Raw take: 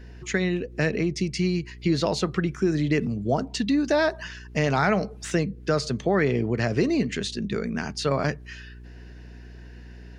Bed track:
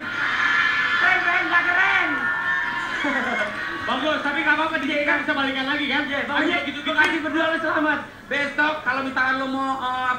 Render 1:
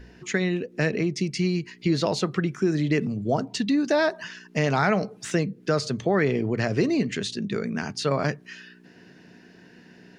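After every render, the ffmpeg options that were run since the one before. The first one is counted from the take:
-af "bandreject=f=60:t=h:w=4,bandreject=f=120:t=h:w=4"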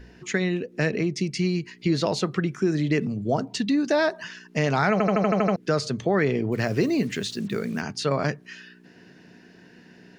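-filter_complex "[0:a]asettb=1/sr,asplit=3[a][b][c];[a]atrim=end=6.524[d];[b]atrim=start=6.52:end=7.81,asetpts=PTS-STARTPTS,afade=t=in:d=0.004:c=qsin,afade=t=out:st=1.286:d=0.004:c=qsin,acrusher=bits=7:mix=0:aa=0.5[e];[c]atrim=start=7.806[f];[d][e]acrossfade=d=0.004:c1=hsin:c2=qsin[g];[g][f]acrossfade=d=0.004:c1=qsin:c2=hsin,asplit=9[h][i][j][k][l][m][n][o][p];[h]atrim=end=5.002[q];[i]atrim=start=4.918:end=5.002[r];[j]atrim=start=4.918:end=5.002[s];[k]atrim=start=4.918:end=5.002[t];[l]atrim=start=4.918:end=5.002[u];[m]atrim=start=4.918:end=5.002[v];[n]atrim=start=4.918:end=5.002[w];[o]atrim=start=4.918:end=5.002[x];[p]atrim=start=5.558[y];[q][r]acrossfade=d=0.004:c1=hsin:c2=hsin[z];[z][s]acrossfade=d=0.004:c1=hsin:c2=hsin[aa];[aa][t]acrossfade=d=0.004:c1=hsin:c2=hsin[ab];[ab][u]acrossfade=d=0.004:c1=hsin:c2=hsin[ac];[ac][v]acrossfade=d=0.004:c1=hsin:c2=hsin[ad];[ad][w]acrossfade=d=0.004:c1=hsin:c2=hsin[ae];[ae][x]acrossfade=d=0.004:c1=hsin:c2=hsin[af];[af][y]acrossfade=d=0.004:c1=hsin:c2=hsin"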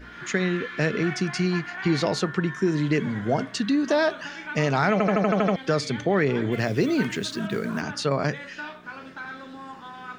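-filter_complex "[1:a]volume=-16.5dB[a];[0:a][a]amix=inputs=2:normalize=0"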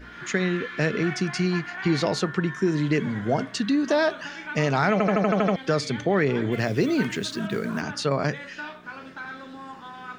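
-af anull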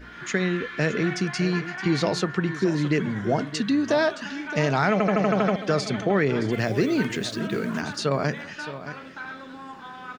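-af "aecho=1:1:619:0.224"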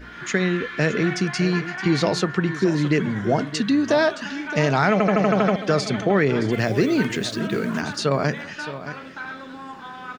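-af "volume=3dB"

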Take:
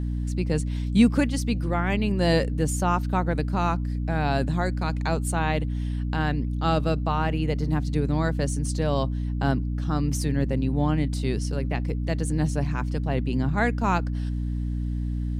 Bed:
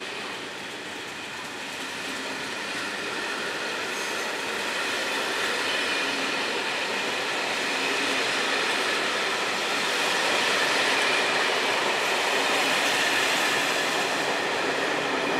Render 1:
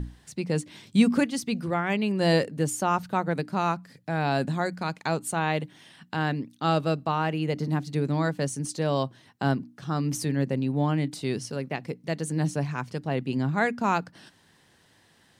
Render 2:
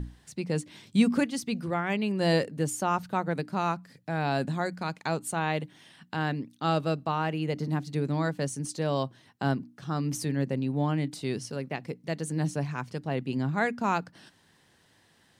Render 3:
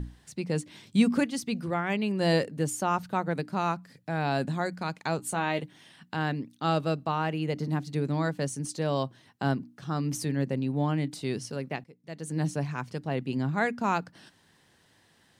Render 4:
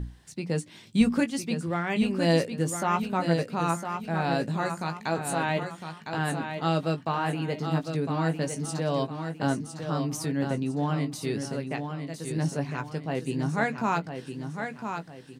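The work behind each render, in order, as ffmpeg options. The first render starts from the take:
-af "bandreject=f=60:t=h:w=6,bandreject=f=120:t=h:w=6,bandreject=f=180:t=h:w=6,bandreject=f=240:t=h:w=6,bandreject=f=300:t=h:w=6"
-af "volume=-2.5dB"
-filter_complex "[0:a]asettb=1/sr,asplit=3[a][b][c];[a]atrim=end=5.174[d];[b]atrim=start=5.17:end=5.63,asetpts=PTS-STARTPTS,afade=t=in:d=0.004:c=qsin,afade=t=out:st=0.456:d=0.004:c=qsin,asplit=2[e][f];[f]adelay=16,volume=-8dB[g];[e][g]amix=inputs=2:normalize=0,atrim=end_sample=20286[h];[c]atrim=start=5.626[i];[d][h]acrossfade=d=0.004:c1=hsin:c2=qsin[j];[j][i]acrossfade=d=0.004:c1=qsin:c2=hsin,asplit=2[k][l];[k]atrim=end=11.84,asetpts=PTS-STARTPTS,afade=t=out:st=11.836:d=0.004:c=hsin:silence=0.125893[m];[l]atrim=start=11.84,asetpts=PTS-STARTPTS,afade=t=in:d=0.53:c=qua:silence=0.125893[n];[m][n]concat=n=2:v=0:a=1"
-filter_complex "[0:a]asplit=2[a][b];[b]adelay=18,volume=-9dB[c];[a][c]amix=inputs=2:normalize=0,asplit=2[d][e];[e]aecho=0:1:1007|2014|3021|4028:0.447|0.165|0.0612|0.0226[f];[d][f]amix=inputs=2:normalize=0"

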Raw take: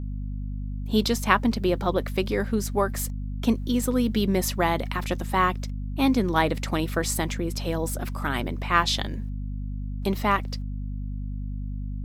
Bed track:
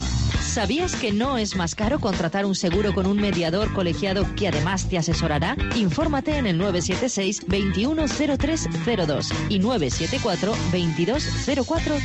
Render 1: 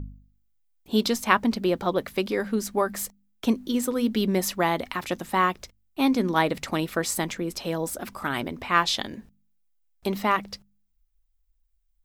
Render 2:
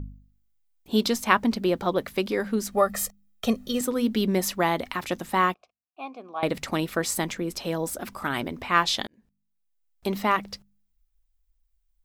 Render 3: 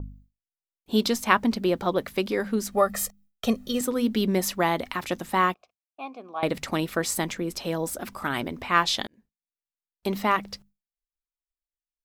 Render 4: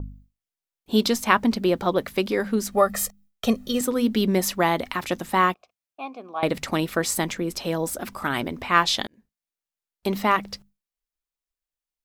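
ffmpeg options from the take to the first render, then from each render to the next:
-af "bandreject=f=50:t=h:w=4,bandreject=f=100:t=h:w=4,bandreject=f=150:t=h:w=4,bandreject=f=200:t=h:w=4,bandreject=f=250:t=h:w=4"
-filter_complex "[0:a]asettb=1/sr,asplit=3[a][b][c];[a]atrim=end=2.724[d];[b]atrim=start=2.72:end=3.81,asetpts=PTS-STARTPTS,afade=t=in:d=0.004:c=qsin,afade=t=out:st=1.086:d=0.004:c=qsin,aecho=1:1:1.6:0.93,atrim=end_sample=48069[e];[c]atrim=start=3.806[f];[d][e]acrossfade=d=0.004:c1=hsin:c2=qsin[g];[g][f]acrossfade=d=0.004:c1=qsin:c2=hsin,asettb=1/sr,asplit=3[h][i][j];[h]atrim=end=5.544[k];[i]atrim=start=5.54:end=6.43,asetpts=PTS-STARTPTS,afade=t=in:d=0.004:c=qsin,afade=t=out:st=0.886:d=0.004:c=qsin,asplit=3[l][m][n];[l]bandpass=f=730:t=q:w=8,volume=0dB[o];[m]bandpass=f=1.09k:t=q:w=8,volume=-6dB[p];[n]bandpass=f=2.44k:t=q:w=8,volume=-9dB[q];[o][p][q]amix=inputs=3:normalize=0[r];[j]atrim=start=6.426[s];[k][r]acrossfade=d=0.004:c1=hsin:c2=qsin[t];[t][s]acrossfade=d=0.004:c1=qsin:c2=hsin,asplit=2[u][v];[u]atrim=end=9.07,asetpts=PTS-STARTPTS,afade=t=out:st=9.066:d=0.004:c=hsin[w];[v]atrim=start=9.07,asetpts=PTS-STARTPTS,afade=t=in:d=1.07[x];[w][x]concat=n=2:v=0:a=1"
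-af "agate=range=-33dB:threshold=-48dB:ratio=3:detection=peak"
-af "volume=2.5dB,alimiter=limit=-2dB:level=0:latency=1"

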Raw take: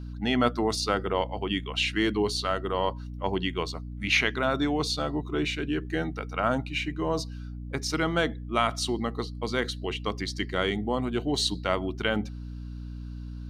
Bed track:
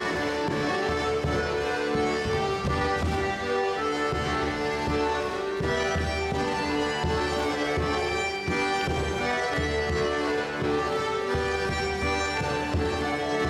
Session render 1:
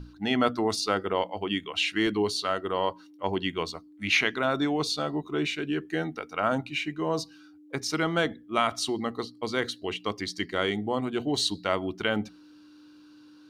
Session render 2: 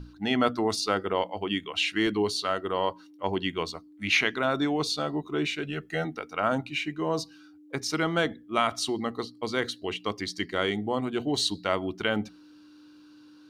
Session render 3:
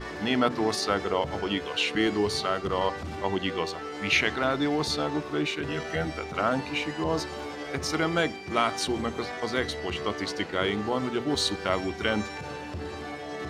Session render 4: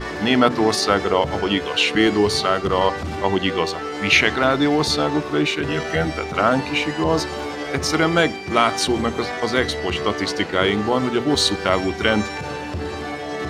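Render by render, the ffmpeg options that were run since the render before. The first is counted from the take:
-af "bandreject=f=60:t=h:w=6,bandreject=f=120:t=h:w=6,bandreject=f=180:t=h:w=6,bandreject=f=240:t=h:w=6"
-filter_complex "[0:a]asettb=1/sr,asplit=3[a][b][c];[a]atrim=end=5.634[d];[b]atrim=start=5.63:end=6.05,asetpts=PTS-STARTPTS,afade=t=in:d=0.004:c=qsin,afade=t=out:st=0.416:d=0.004:c=qsin,aecho=1:1:1.5:0.71,atrim=end_sample=18522[e];[c]atrim=start=6.046[f];[d][e]acrossfade=d=0.004:c1=hsin:c2=qsin[g];[g][f]acrossfade=d=0.004:c1=qsin:c2=hsin"
-filter_complex "[1:a]volume=-9.5dB[a];[0:a][a]amix=inputs=2:normalize=0"
-af "volume=8.5dB,alimiter=limit=-3dB:level=0:latency=1"

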